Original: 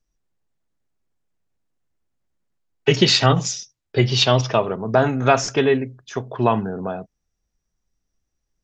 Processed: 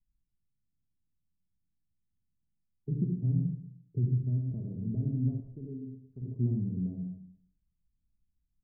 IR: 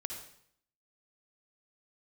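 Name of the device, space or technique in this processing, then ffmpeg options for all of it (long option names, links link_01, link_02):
club heard from the street: -filter_complex "[0:a]alimiter=limit=-10dB:level=0:latency=1:release=316,lowpass=frequency=230:width=0.5412,lowpass=frequency=230:width=1.3066[link_01];[1:a]atrim=start_sample=2205[link_02];[link_01][link_02]afir=irnorm=-1:irlink=0,asettb=1/sr,asplit=3[link_03][link_04][link_05];[link_03]atrim=end=5.404[link_06];[link_04]atrim=start=5.4:end=6.22,asetpts=PTS-STARTPTS,afade=type=in:duration=0.004:curve=qsin,afade=type=out:start_time=0.816:duration=0.004:curve=qsin,equalizer=frequency=190:width=0.46:gain=-10.5[link_07];[link_05]atrim=start=6.216[link_08];[link_06][link_07]acrossfade=duration=0.004:curve1=hsin:curve2=qsin[link_09];[link_09][link_08]acrossfade=duration=0.004:curve1=qsin:curve2=hsin,volume=-1.5dB"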